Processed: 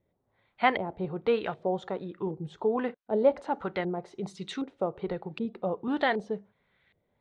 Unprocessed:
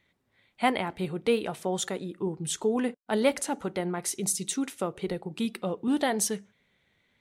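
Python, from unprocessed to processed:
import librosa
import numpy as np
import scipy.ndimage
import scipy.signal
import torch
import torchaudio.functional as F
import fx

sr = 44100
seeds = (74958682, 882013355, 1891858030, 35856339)

y = fx.graphic_eq(x, sr, hz=(250, 4000, 8000), db=(-5, 12, 5))
y = fx.filter_lfo_lowpass(y, sr, shape='saw_up', hz=1.3, low_hz=490.0, high_hz=2000.0, q=1.4)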